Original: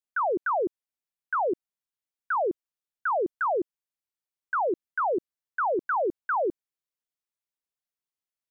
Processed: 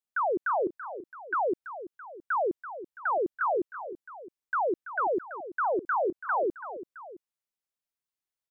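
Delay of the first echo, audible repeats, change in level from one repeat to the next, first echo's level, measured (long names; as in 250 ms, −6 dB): 333 ms, 2, −5.0 dB, −12.5 dB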